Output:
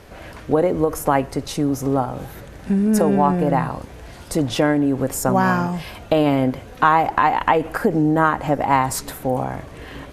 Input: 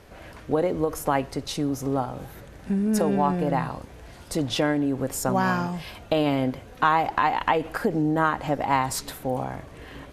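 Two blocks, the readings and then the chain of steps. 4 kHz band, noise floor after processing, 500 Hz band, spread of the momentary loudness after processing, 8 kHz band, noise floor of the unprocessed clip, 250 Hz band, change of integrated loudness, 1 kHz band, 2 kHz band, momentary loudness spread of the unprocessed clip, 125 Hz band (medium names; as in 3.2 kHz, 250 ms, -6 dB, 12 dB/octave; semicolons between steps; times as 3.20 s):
+1.0 dB, -40 dBFS, +6.0 dB, 15 LU, +4.5 dB, -46 dBFS, +6.0 dB, +5.5 dB, +5.5 dB, +4.5 dB, 15 LU, +6.0 dB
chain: dynamic bell 3.9 kHz, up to -6 dB, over -45 dBFS, Q 1; trim +6 dB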